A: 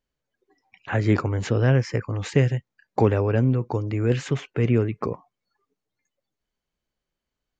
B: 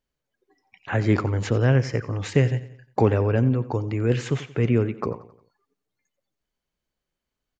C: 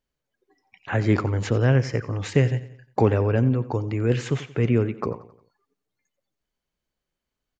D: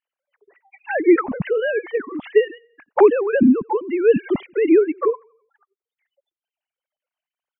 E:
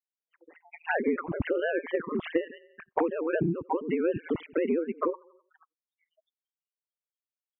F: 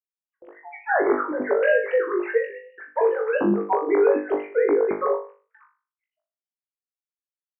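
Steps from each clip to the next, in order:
feedback echo 89 ms, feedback 47%, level -16.5 dB
nothing audible
sine-wave speech; reverb removal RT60 1.3 s; low shelf 260 Hz +11 dB; gain +1.5 dB
ring modulator 82 Hz; compressor 8:1, threshold -28 dBFS, peak gain reduction 18.5 dB; spectral noise reduction 24 dB; gain +3.5 dB
sine-wave speech; gate with hold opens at -49 dBFS; flutter echo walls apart 3.4 m, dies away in 0.37 s; gain +4.5 dB

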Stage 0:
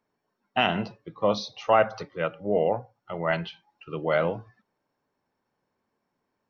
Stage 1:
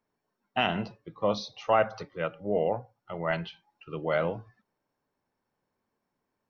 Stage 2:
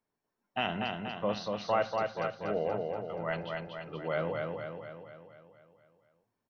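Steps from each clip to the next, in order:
low shelf 64 Hz +7 dB; gain -3.5 dB
feedback echo 0.239 s, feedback 56%, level -3.5 dB; gain -5.5 dB

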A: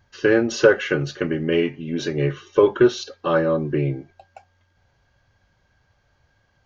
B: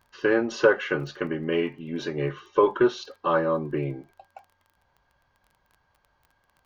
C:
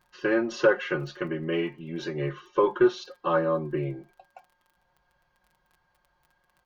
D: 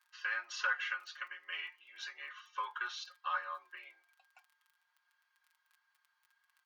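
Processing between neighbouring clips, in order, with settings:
crackle 17/s -38 dBFS; fifteen-band EQ 100 Hz -9 dB, 1000 Hz +9 dB, 6300 Hz -5 dB; gain -5.5 dB
comb 5.6 ms, depth 62%; gain -3.5 dB
HPF 1200 Hz 24 dB/oct; gain -3.5 dB

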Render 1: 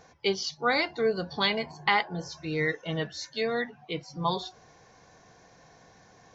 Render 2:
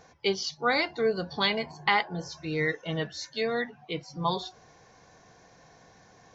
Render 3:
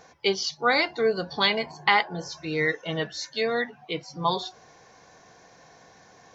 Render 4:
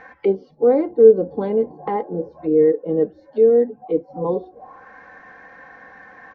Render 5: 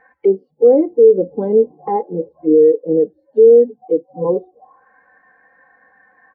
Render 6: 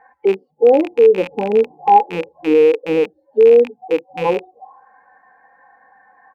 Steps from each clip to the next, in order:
nothing audible
low shelf 170 Hz -8.5 dB; gain +4 dB
comb 3.8 ms, depth 61%; envelope low-pass 420–2000 Hz down, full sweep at -28.5 dBFS; gain +4 dB
maximiser +10.5 dB; spectral expander 1.5:1; gain -1 dB
rattling part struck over -36 dBFS, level -16 dBFS; bell 850 Hz +14.5 dB 0.55 oct; gain -3 dB

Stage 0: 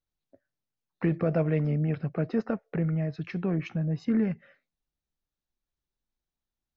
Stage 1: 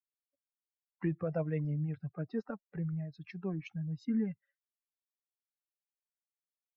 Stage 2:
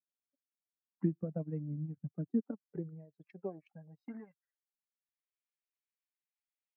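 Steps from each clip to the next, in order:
per-bin expansion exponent 2; gain -5 dB
transient shaper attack +7 dB, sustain -12 dB; band-pass sweep 230 Hz -> 2200 Hz, 2.24–5.2; gain +2 dB

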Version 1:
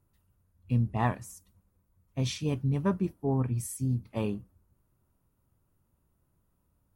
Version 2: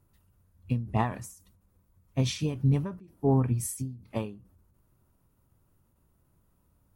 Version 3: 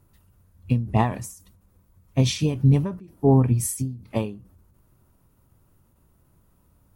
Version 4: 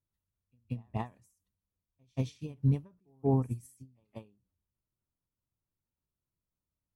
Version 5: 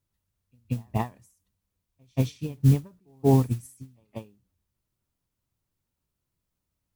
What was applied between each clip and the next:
ending taper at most 110 dB/s; gain +5 dB
dynamic EQ 1400 Hz, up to -6 dB, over -50 dBFS, Q 1.9; gain +7 dB
pre-echo 0.18 s -18 dB; upward expander 2.5:1, over -28 dBFS; gain -8.5 dB
modulation noise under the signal 25 dB; gain +8 dB

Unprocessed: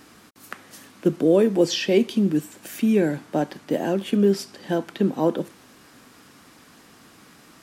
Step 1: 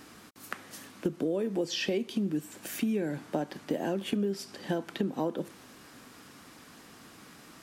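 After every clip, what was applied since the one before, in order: compressor 10:1, threshold -25 dBFS, peak gain reduction 13 dB; gain -1.5 dB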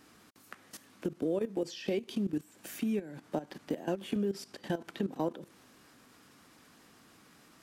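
level quantiser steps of 15 dB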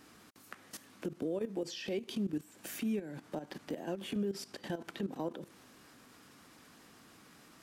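limiter -28.5 dBFS, peak gain reduction 10 dB; gain +1 dB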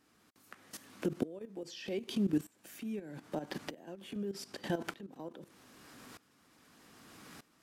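dB-ramp tremolo swelling 0.81 Hz, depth 20 dB; gain +7.5 dB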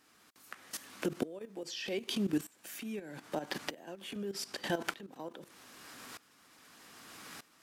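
low shelf 500 Hz -10 dB; gain +6.5 dB

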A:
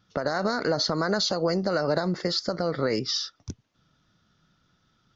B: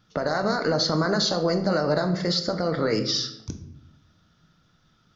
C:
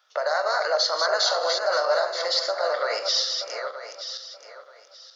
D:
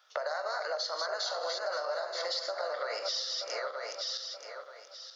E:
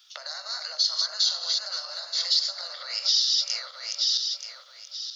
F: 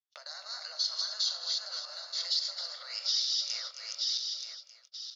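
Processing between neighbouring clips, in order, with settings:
in parallel at -3 dB: limiter -20.5 dBFS, peak gain reduction 8.5 dB; on the sum: shoebox room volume 200 m³, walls mixed, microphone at 0.49 m; gain -2 dB
regenerating reverse delay 0.464 s, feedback 48%, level -5 dB; elliptic high-pass 560 Hz, stop band 70 dB; gain +2.5 dB
compressor 6:1, threshold -32 dBFS, peak gain reduction 13.5 dB
HPF 1300 Hz 12 dB/oct; resonant high shelf 2400 Hz +10.5 dB, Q 1.5
gate -41 dBFS, range -41 dB; echo 0.266 s -9.5 dB; gain -7.5 dB

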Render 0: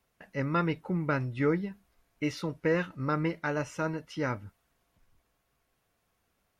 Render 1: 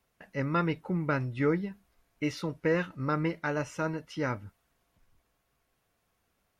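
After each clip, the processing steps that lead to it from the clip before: nothing audible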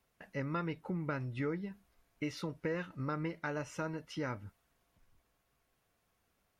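compressor 2.5:1, threshold -34 dBFS, peak gain reduction 8.5 dB; gain -2 dB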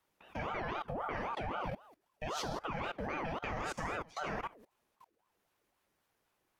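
non-linear reverb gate 0.24 s falling, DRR -2 dB; level quantiser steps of 21 dB; ring modulator with a swept carrier 690 Hz, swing 55%, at 3.8 Hz; gain +7 dB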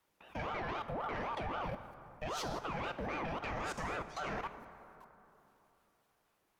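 soft clip -32 dBFS, distortion -16 dB; plate-style reverb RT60 3.3 s, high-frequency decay 0.45×, DRR 10.5 dB; gain +1 dB

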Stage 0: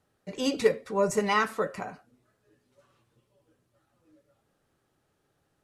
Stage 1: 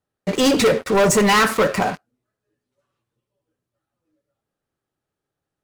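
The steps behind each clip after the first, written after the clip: sample leveller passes 5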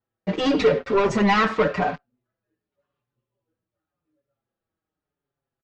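Gaussian blur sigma 2 samples; endless flanger 5.5 ms -0.9 Hz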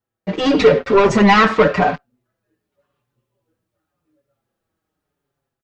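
AGC gain up to 7.5 dB; gain +1.5 dB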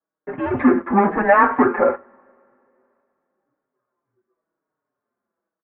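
two-slope reverb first 0.34 s, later 2.9 s, from -22 dB, DRR 18 dB; mistuned SSB -190 Hz 470–2000 Hz

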